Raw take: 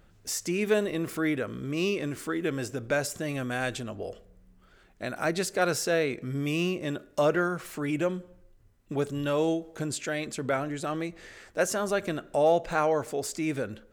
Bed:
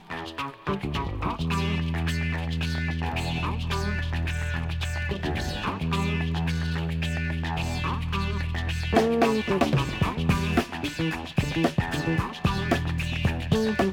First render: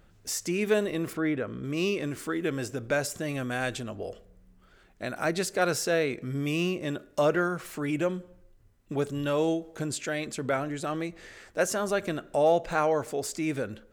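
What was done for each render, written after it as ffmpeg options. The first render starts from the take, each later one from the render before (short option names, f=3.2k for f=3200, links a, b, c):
-filter_complex "[0:a]asettb=1/sr,asplit=3[a][b][c];[a]atrim=end=1.134[d];[b]atrim=start=1.13:end=1.64,asetpts=PTS-STARTPTS,afade=t=in:d=0.004:c=qsin,afade=t=out:st=0.506:d=0.004:c=qsin,aemphasis=mode=reproduction:type=75kf[e];[c]atrim=start=1.636[f];[d][e]acrossfade=d=0.004:c1=hsin:c2=qsin[g];[g][f]acrossfade=d=0.004:c1=qsin:c2=hsin"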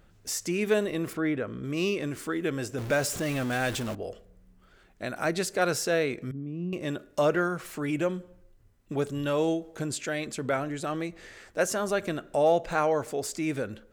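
-filter_complex "[0:a]asettb=1/sr,asplit=3[a][b][c];[a]atrim=end=2.784[d];[b]atrim=start=2.78:end=3.95,asetpts=PTS-STARTPTS,afade=t=in:d=0.004:c=qsin,afade=t=out:st=1.166:d=0.004:c=qsin,aeval=exprs='val(0)+0.5*0.0224*sgn(val(0))':c=same[e];[c]atrim=start=3.946[f];[d][e]acrossfade=d=0.004:c1=hsin:c2=qsin[g];[g][f]acrossfade=d=0.004:c1=qsin:c2=hsin,asettb=1/sr,asplit=3[h][i][j];[h]atrim=end=6.314[k];[i]atrim=start=6.31:end=6.73,asetpts=PTS-STARTPTS,afade=t=in:d=0.004:c=qsin,afade=t=out:st=0.416:d=0.004:c=qsin,bandpass=f=200:t=q:w=2.4[l];[j]atrim=start=6.726[m];[k][l]acrossfade=d=0.004:c1=hsin:c2=qsin[n];[n][m]acrossfade=d=0.004:c1=qsin:c2=hsin"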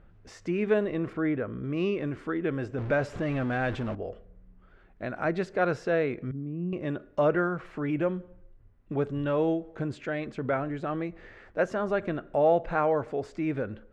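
-af "lowpass=2k,lowshelf=f=88:g=5.5"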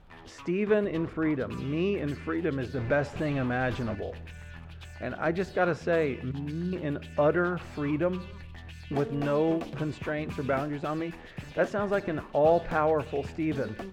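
-filter_complex "[1:a]volume=-16dB[a];[0:a][a]amix=inputs=2:normalize=0"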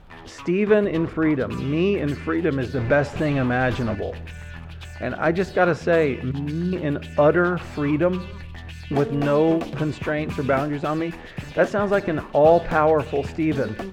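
-af "volume=7.5dB"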